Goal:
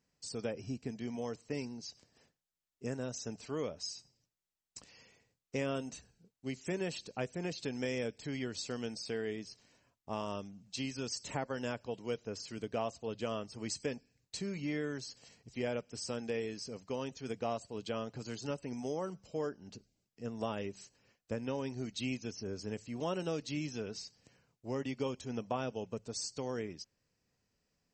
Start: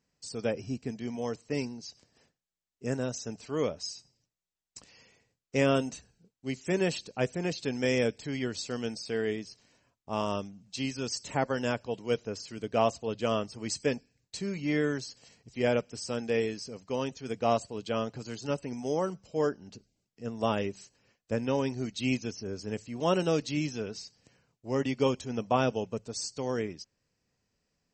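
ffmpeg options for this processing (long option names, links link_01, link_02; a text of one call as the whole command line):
ffmpeg -i in.wav -af "acompressor=threshold=-34dB:ratio=2.5,volume=-2dB" out.wav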